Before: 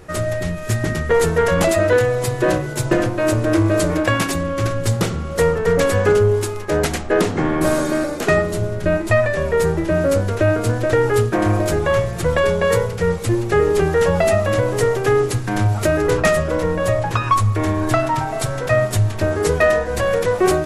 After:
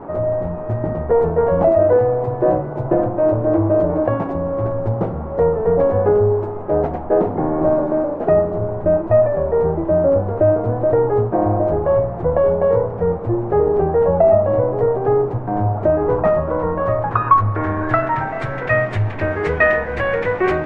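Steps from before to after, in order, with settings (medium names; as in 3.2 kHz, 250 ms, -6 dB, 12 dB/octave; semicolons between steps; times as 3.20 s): low-pass sweep 750 Hz -> 2.1 kHz, 15.69–18.68 s; band noise 110–950 Hz -32 dBFS; trim -2.5 dB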